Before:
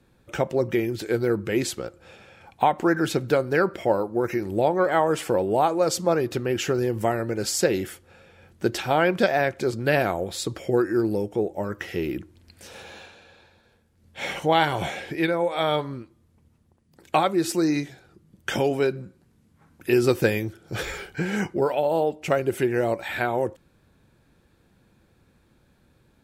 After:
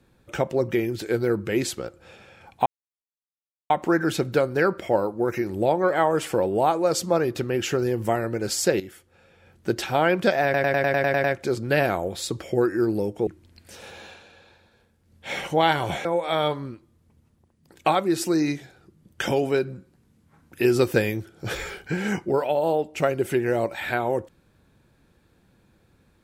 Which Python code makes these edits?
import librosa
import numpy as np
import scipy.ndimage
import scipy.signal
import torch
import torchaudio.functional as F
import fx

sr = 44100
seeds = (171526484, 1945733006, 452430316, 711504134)

y = fx.edit(x, sr, fx.insert_silence(at_s=2.66, length_s=1.04),
    fx.fade_in_from(start_s=7.76, length_s=1.03, floor_db=-12.0),
    fx.stutter(start_s=9.4, slice_s=0.1, count=9),
    fx.cut(start_s=11.43, length_s=0.76),
    fx.cut(start_s=14.97, length_s=0.36), tone=tone)